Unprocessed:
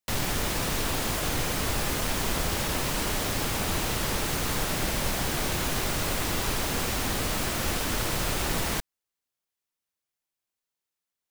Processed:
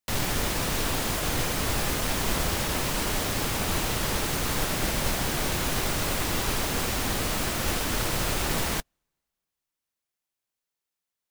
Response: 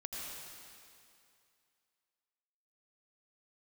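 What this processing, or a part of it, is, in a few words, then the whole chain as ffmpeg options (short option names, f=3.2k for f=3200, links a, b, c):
keyed gated reverb: -filter_complex "[0:a]asplit=3[a][b][c];[1:a]atrim=start_sample=2205[d];[b][d]afir=irnorm=-1:irlink=0[e];[c]apad=whole_len=498339[f];[e][f]sidechaingate=range=-41dB:threshold=-26dB:ratio=16:detection=peak,volume=-9dB[g];[a][g]amix=inputs=2:normalize=0"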